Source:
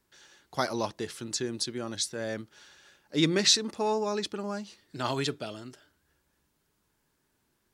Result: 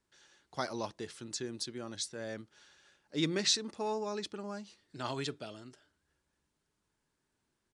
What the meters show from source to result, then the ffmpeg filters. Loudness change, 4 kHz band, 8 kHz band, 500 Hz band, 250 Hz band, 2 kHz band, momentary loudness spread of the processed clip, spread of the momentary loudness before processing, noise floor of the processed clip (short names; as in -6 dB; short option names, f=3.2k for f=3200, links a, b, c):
-7.0 dB, -7.0 dB, -7.0 dB, -7.0 dB, -7.0 dB, -7.0 dB, 17 LU, 17 LU, -83 dBFS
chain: -af "aresample=22050,aresample=44100,volume=-7dB"